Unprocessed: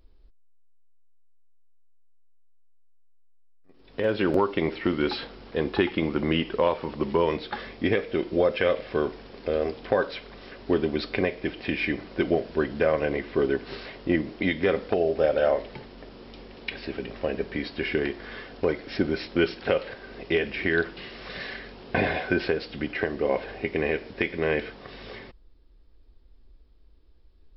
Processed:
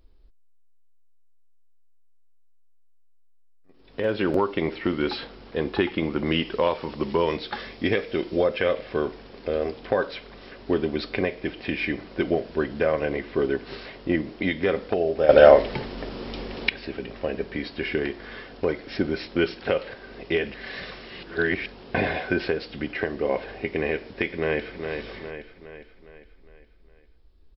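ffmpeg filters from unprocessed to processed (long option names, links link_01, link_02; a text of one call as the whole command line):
ffmpeg -i in.wav -filter_complex "[0:a]asettb=1/sr,asplit=3[link_01][link_02][link_03];[link_01]atrim=end=6.264[link_04];[link_02]atrim=start=6.26:end=8.44,asetpts=PTS-STARTPTS,afade=type=in:duration=0.004:curve=qsin,afade=type=out:start_time=2.176:duration=0.004:curve=qsin,highshelf=frequency=4300:gain=9.5[link_05];[link_03]atrim=start=8.436[link_06];[link_04][link_05]acrossfade=duration=0.004:curve1=hsin:curve2=qsin[link_07];[link_07][link_06]acrossfade=duration=0.004:curve1=qsin:curve2=hsin,asplit=2[link_08][link_09];[link_09]afade=type=in:start_time=24.27:duration=0.01,afade=type=out:start_time=24.83:duration=0.01,aecho=0:1:410|820|1230|1640|2050|2460:0.501187|0.250594|0.125297|0.0626484|0.0313242|0.0156621[link_10];[link_08][link_10]amix=inputs=2:normalize=0,asplit=5[link_11][link_12][link_13][link_14][link_15];[link_11]atrim=end=15.292[link_16];[link_12]atrim=start=15.288:end=16.692,asetpts=PTS-STARTPTS,volume=10.5dB[link_17];[link_13]atrim=start=16.688:end=20.542[link_18];[link_14]atrim=start=20.538:end=21.662,asetpts=PTS-STARTPTS,areverse[link_19];[link_15]atrim=start=21.658[link_20];[link_16][link_17]acrossfade=duration=0.004:curve1=hsin:curve2=hsin[link_21];[link_21][link_18]acrossfade=duration=0.004:curve1=hsin:curve2=hsin[link_22];[link_22][link_19]acrossfade=duration=0.004:curve1=hsin:curve2=hsin[link_23];[link_23][link_20]acrossfade=duration=0.004:curve1=hsin:curve2=hsin" out.wav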